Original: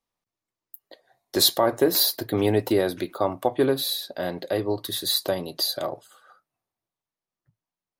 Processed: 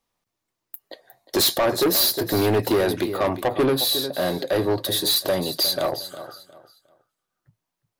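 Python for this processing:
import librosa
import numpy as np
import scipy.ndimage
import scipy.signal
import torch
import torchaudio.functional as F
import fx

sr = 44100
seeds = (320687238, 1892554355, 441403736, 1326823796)

p1 = x + fx.echo_feedback(x, sr, ms=358, feedback_pct=26, wet_db=-15.5, dry=0)
p2 = 10.0 ** (-23.0 / 20.0) * np.tanh(p1 / 10.0 ** (-23.0 / 20.0))
y = p2 * 10.0 ** (7.5 / 20.0)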